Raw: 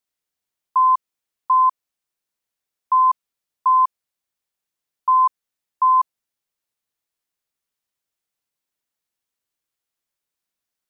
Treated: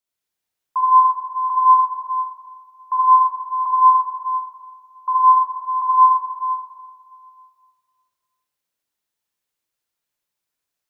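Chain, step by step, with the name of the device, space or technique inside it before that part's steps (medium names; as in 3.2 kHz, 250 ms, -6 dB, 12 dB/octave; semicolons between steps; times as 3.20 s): stairwell (reverberation RT60 2.0 s, pre-delay 37 ms, DRR -5.5 dB); trim -4 dB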